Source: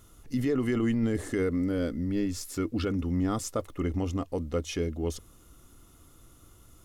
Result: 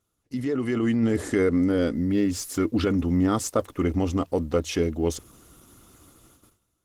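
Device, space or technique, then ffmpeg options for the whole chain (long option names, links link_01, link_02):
video call: -af "highpass=frequency=110:poles=1,dynaudnorm=framelen=350:gausssize=5:maxgain=7.5dB,agate=range=-17dB:threshold=-52dB:ratio=16:detection=peak" -ar 48000 -c:a libopus -b:a 16k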